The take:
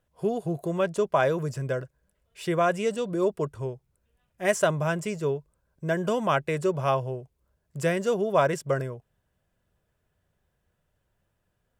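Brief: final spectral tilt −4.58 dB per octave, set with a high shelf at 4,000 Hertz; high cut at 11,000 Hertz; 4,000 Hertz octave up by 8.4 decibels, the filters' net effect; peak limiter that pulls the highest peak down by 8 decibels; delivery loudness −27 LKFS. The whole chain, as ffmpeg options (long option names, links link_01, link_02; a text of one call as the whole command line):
ffmpeg -i in.wav -af "lowpass=11000,highshelf=frequency=4000:gain=6.5,equalizer=frequency=4000:width_type=o:gain=8,volume=1.5dB,alimiter=limit=-14.5dB:level=0:latency=1" out.wav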